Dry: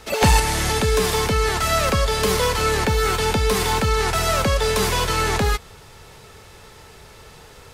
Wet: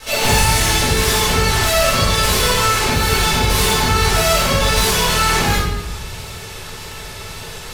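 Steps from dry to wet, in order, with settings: high shelf 2000 Hz +9 dB; in parallel at +2 dB: compressor, threshold -29 dBFS, peak gain reduction 18 dB; on the sum: one-sided clip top -18 dBFS, bottom -10 dBFS; wow and flutter 16 cents; shoebox room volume 360 m³, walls mixed, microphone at 5.6 m; gain -11 dB

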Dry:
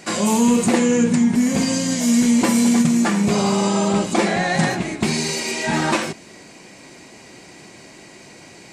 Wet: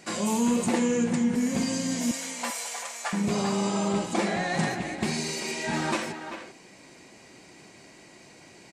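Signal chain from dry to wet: 2.11–3.13 inverse Chebyshev high-pass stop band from 300 Hz, stop band 40 dB; speakerphone echo 0.39 s, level -8 dB; gain -8.5 dB

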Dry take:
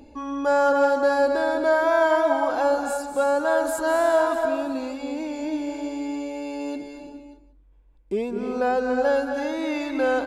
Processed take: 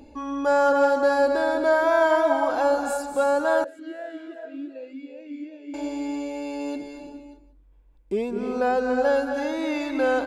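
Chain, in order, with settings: 3.64–5.74 vowel sweep e-i 2.6 Hz

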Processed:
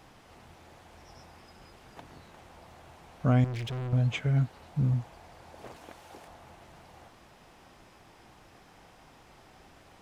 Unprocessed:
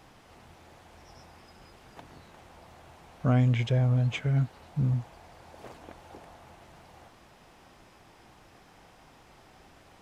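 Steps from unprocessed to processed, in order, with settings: 3.44–3.93 overloaded stage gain 33 dB; 5.76–6.28 tilt +1.5 dB/oct

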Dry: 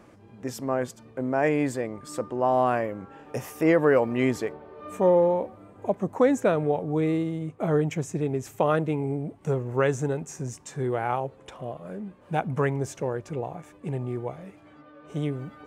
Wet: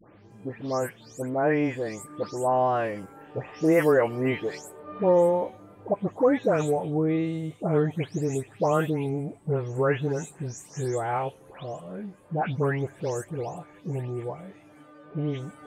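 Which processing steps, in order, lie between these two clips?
spectral delay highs late, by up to 0.307 s

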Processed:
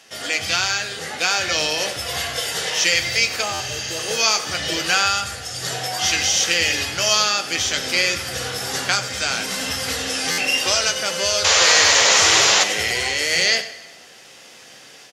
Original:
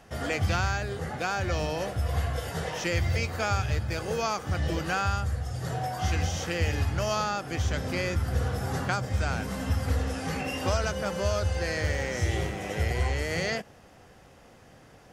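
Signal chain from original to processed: weighting filter D; spectral repair 3.44–4.04, 1300–7300 Hz after; HPF 74 Hz; tone controls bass -6 dB, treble +8 dB; AGC gain up to 6 dB; painted sound noise, 11.44–12.64, 410–7400 Hz -15 dBFS; flange 0.16 Hz, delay 9 ms, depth 7.3 ms, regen -56%; on a send: echo 94 ms -15.5 dB; on the sum: plate-style reverb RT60 1.4 s, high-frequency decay 0.85×, DRR 13 dB; stuck buffer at 3.53/10.31, samples 512, times 5; gain +3.5 dB

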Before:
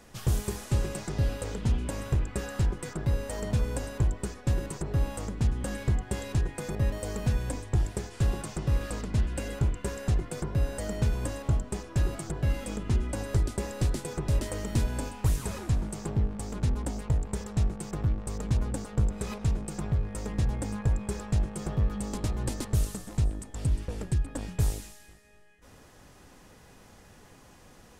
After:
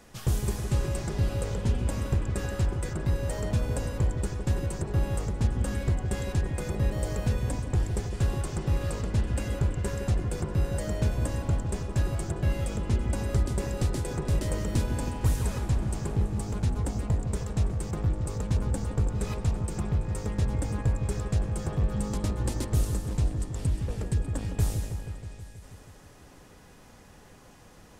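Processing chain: repeats that get brighter 0.16 s, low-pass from 750 Hz, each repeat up 1 oct, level -6 dB

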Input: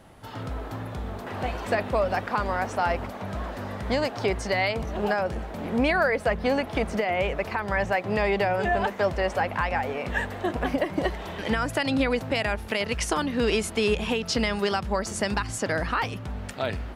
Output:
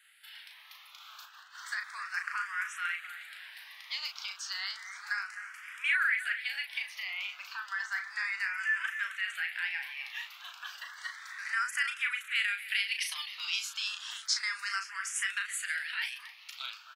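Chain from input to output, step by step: steep high-pass 1400 Hz 36 dB/oct; 1–1.55 negative-ratio compressor -49 dBFS, ratio -1; doubler 36 ms -6 dB; echo with dull and thin repeats by turns 0.261 s, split 2200 Hz, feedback 53%, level -10.5 dB; endless phaser +0.32 Hz

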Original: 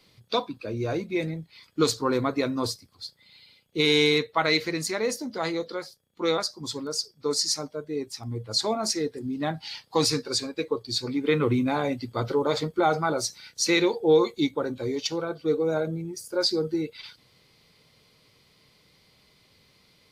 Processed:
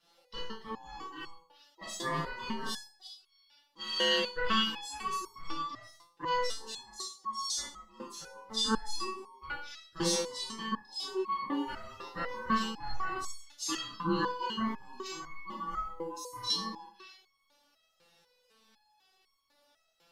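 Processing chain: ring modulator 660 Hz; Schroeder reverb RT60 0.39 s, combs from 25 ms, DRR -2 dB; stepped resonator 4 Hz 170–1100 Hz; gain +5 dB

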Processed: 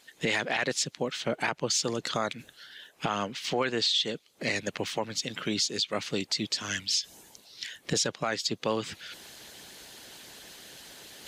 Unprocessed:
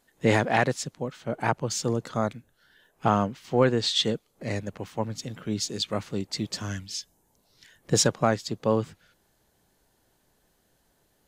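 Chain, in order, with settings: weighting filter D; reverse; upward compressor, threshold -41 dBFS; reverse; harmonic-percussive split percussive +8 dB; compressor 2:1, threshold -29 dBFS, peak gain reduction 15 dB; limiter -17 dBFS, peak gain reduction 10 dB

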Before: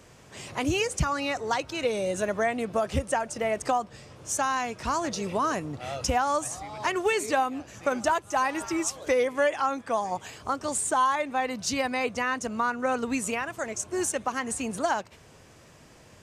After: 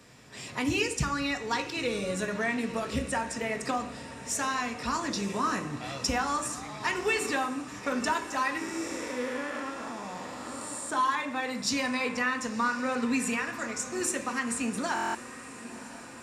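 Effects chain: 8.57–10.9 time blur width 0.402 s; dynamic EQ 690 Hz, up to -7 dB, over -40 dBFS, Q 2.3; diffused feedback echo 1.027 s, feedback 64%, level -14.5 dB; reverb RT60 0.65 s, pre-delay 3 ms, DRR 4 dB; stuck buffer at 14.94, samples 1024, times 8; gain -2 dB

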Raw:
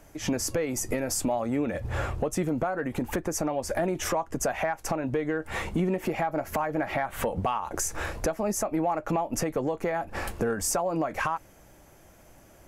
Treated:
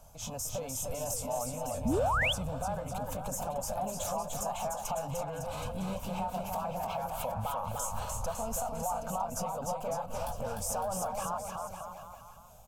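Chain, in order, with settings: repeated pitch sweeps +2.5 st, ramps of 0.581 s; bell 380 Hz -10 dB 0.29 oct; limiter -26 dBFS, peak gain reduction 8 dB; fixed phaser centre 790 Hz, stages 4; bouncing-ball echo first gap 0.3 s, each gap 0.85×, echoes 5; painted sound rise, 1.85–2.33, 200–3600 Hz -29 dBFS

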